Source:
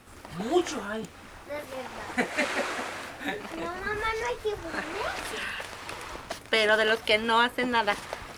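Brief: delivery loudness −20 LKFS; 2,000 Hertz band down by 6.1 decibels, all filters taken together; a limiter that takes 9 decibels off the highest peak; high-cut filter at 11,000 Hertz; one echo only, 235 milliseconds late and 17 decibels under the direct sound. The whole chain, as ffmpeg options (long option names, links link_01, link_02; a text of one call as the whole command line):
ffmpeg -i in.wav -af "lowpass=11000,equalizer=frequency=2000:width_type=o:gain=-8,alimiter=limit=-20dB:level=0:latency=1,aecho=1:1:235:0.141,volume=13.5dB" out.wav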